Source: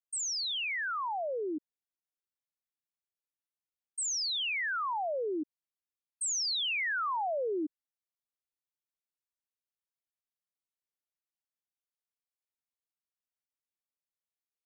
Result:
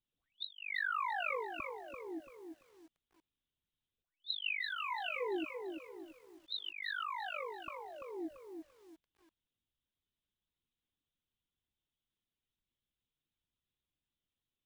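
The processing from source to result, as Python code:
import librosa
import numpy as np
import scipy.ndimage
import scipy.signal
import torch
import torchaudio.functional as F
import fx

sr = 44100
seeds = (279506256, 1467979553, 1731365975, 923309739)

y = fx.band_shelf(x, sr, hz=1000.0, db=-12.5, octaves=2.9)
y = y + 10.0 ** (-18.0 / 20.0) * np.pad(y, (int(608 * sr / 1000.0), 0))[:len(y)]
y = fx.lpc_vocoder(y, sr, seeds[0], excitation='pitch_kept', order=16)
y = fx.comb_fb(y, sr, f0_hz=500.0, decay_s=0.18, harmonics='all', damping=0.0, mix_pct=70, at=(4.02, 6.7))
y = fx.over_compress(y, sr, threshold_db=-48.0, ratio=-0.5)
y = fx.low_shelf(y, sr, hz=230.0, db=4.5)
y = fx.echo_crushed(y, sr, ms=339, feedback_pct=35, bits=12, wet_db=-6.0)
y = y * 10.0 ** (7.5 / 20.0)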